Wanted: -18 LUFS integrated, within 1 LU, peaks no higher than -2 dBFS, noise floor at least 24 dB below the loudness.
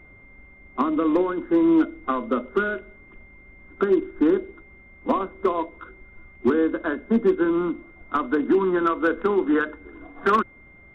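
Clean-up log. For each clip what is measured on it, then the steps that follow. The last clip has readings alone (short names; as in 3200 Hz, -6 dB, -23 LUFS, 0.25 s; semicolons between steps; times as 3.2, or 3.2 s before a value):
clipped 0.4%; flat tops at -12.0 dBFS; steady tone 2100 Hz; tone level -49 dBFS; loudness -23.0 LUFS; peak -12.0 dBFS; loudness target -18.0 LUFS
-> clip repair -12 dBFS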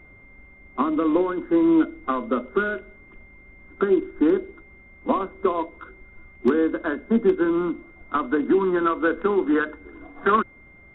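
clipped 0.0%; steady tone 2100 Hz; tone level -49 dBFS
-> notch 2100 Hz, Q 30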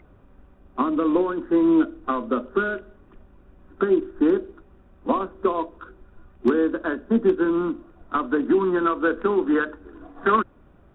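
steady tone none; loudness -23.0 LUFS; peak -7.5 dBFS; loudness target -18.0 LUFS
-> gain +5 dB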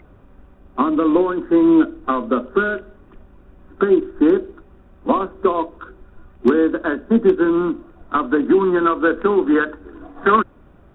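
loudness -18.0 LUFS; peak -2.5 dBFS; noise floor -48 dBFS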